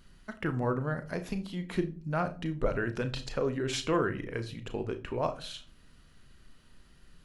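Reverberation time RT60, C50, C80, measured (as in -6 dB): not exponential, 15.0 dB, 20.5 dB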